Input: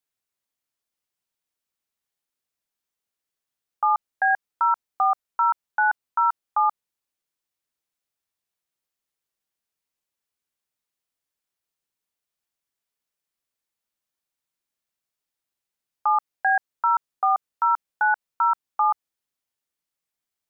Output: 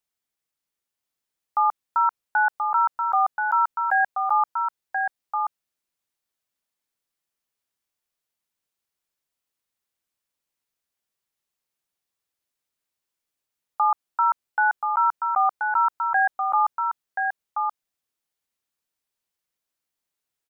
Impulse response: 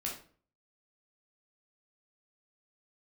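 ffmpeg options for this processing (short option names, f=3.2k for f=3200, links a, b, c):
-af "areverse,aecho=1:1:1030:0.562"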